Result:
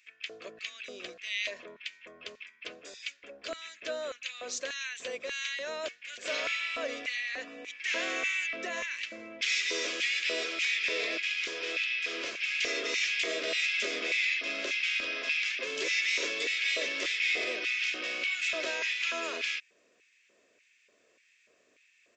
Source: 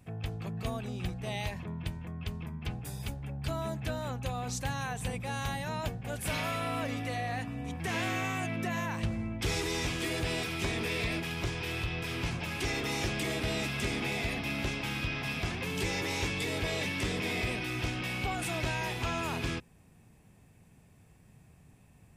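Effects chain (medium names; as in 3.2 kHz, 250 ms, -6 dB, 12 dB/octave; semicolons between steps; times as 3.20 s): resampled via 16 kHz; LFO high-pass square 1.7 Hz 600–2200 Hz; static phaser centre 340 Hz, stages 4; trim +3.5 dB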